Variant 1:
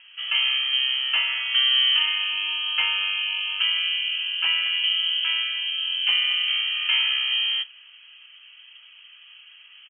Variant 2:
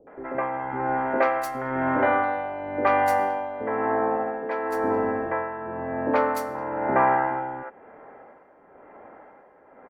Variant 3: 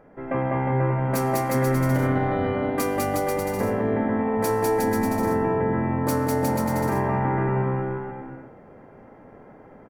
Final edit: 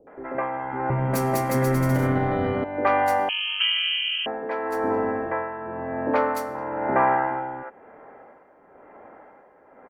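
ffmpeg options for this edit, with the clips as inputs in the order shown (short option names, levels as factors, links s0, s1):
-filter_complex "[1:a]asplit=3[s0][s1][s2];[s0]atrim=end=0.902[s3];[2:a]atrim=start=0.898:end=2.642[s4];[s1]atrim=start=2.638:end=3.292[s5];[0:a]atrim=start=3.288:end=4.262[s6];[s2]atrim=start=4.258[s7];[s3][s4]acrossfade=d=0.004:c1=hsin:c2=hsin[s8];[s8][s5]acrossfade=d=0.004:c1=hsin:c2=hsin[s9];[s9][s6]acrossfade=d=0.004:c1=hsin:c2=hsin[s10];[s10][s7]acrossfade=d=0.004:c1=hsin:c2=hsin"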